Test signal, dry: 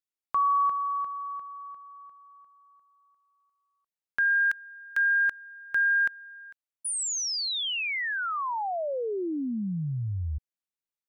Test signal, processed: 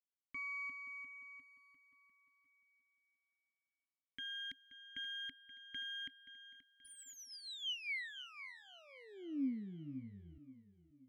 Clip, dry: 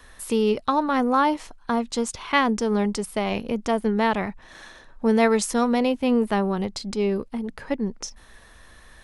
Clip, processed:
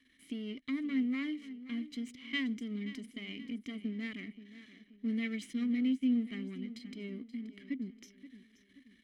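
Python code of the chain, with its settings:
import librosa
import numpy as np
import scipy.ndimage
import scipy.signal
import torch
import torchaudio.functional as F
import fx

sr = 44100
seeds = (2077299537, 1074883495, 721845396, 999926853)

y = np.where(x < 0.0, 10.0 ** (-12.0 / 20.0) * x, x)
y = fx.vowel_filter(y, sr, vowel='i')
y = fx.high_shelf(y, sr, hz=8700.0, db=11.5)
y = y + 0.42 * np.pad(y, (int(1.0 * sr / 1000.0), 0))[:len(y)]
y = fx.echo_feedback(y, sr, ms=528, feedback_pct=43, wet_db=-15)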